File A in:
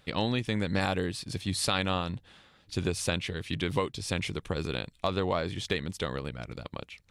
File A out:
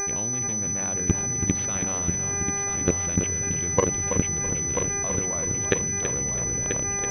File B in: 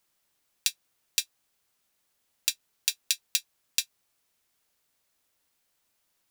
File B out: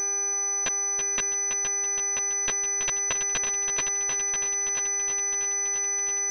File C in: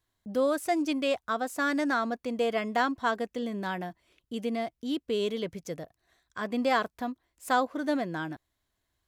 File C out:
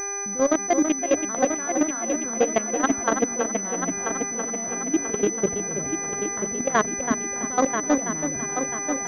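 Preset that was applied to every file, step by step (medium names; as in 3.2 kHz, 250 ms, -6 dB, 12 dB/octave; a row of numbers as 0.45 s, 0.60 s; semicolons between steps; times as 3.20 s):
local Wiener filter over 41 samples; bass shelf 180 Hz +5 dB; de-hum 47.17 Hz, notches 6; reverse; compression 5:1, threshold -36 dBFS; reverse; mains buzz 400 Hz, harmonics 6, -52 dBFS -3 dB/octave; level held to a coarse grid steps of 18 dB; on a send: multi-head delay 329 ms, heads first and third, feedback 60%, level -8 dB; on the sum: class-D stage that switches slowly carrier 6 kHz; normalise loudness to -24 LUFS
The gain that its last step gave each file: +20.5 dB, +14.5 dB, +19.0 dB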